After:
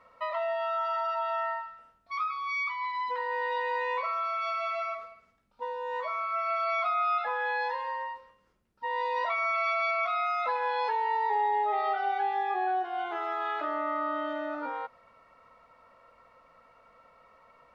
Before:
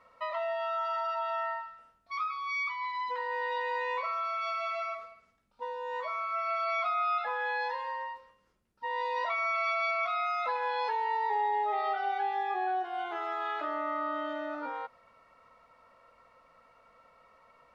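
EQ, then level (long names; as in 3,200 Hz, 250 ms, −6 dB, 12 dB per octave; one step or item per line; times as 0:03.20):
high-shelf EQ 4,100 Hz −5 dB
+2.5 dB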